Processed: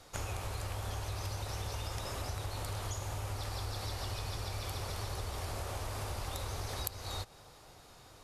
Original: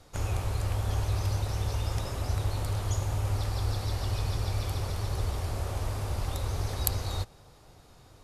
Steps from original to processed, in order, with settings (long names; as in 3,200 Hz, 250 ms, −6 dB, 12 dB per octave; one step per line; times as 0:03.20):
low-shelf EQ 390 Hz −8.5 dB
downward compressor 6 to 1, threshold −38 dBFS, peak gain reduction 16 dB
level +3 dB